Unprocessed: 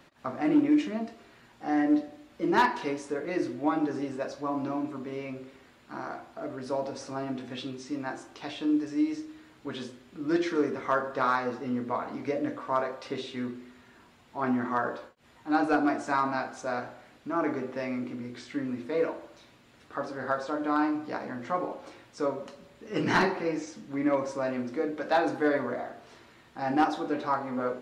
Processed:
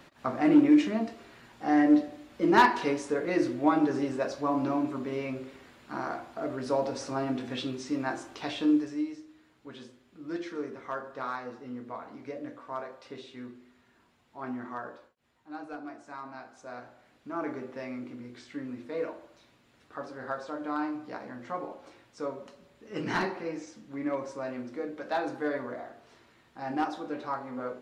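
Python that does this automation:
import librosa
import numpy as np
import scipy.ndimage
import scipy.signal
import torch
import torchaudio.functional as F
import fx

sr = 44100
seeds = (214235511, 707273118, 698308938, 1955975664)

y = fx.gain(x, sr, db=fx.line((8.69, 3.0), (9.17, -9.0), (14.68, -9.0), (15.58, -16.0), (16.1, -16.0), (17.35, -5.5)))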